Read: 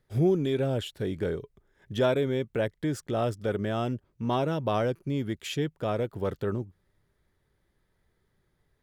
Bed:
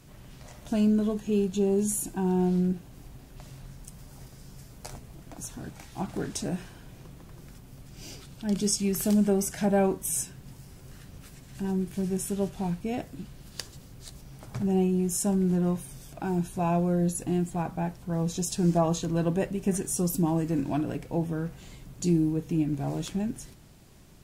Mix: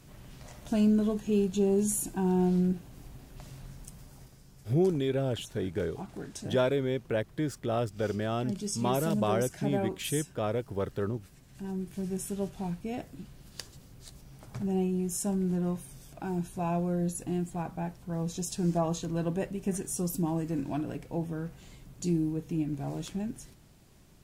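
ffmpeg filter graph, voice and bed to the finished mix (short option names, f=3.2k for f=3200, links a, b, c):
-filter_complex "[0:a]adelay=4550,volume=-2dB[a];[1:a]volume=3dB,afade=t=out:st=3.81:d=0.63:silence=0.421697,afade=t=in:st=11.5:d=0.64:silence=0.630957[b];[a][b]amix=inputs=2:normalize=0"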